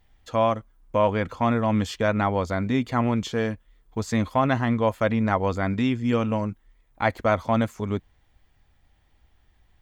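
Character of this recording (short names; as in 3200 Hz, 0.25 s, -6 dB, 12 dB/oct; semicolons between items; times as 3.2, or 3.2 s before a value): noise floor -63 dBFS; spectral tilt -6.0 dB/oct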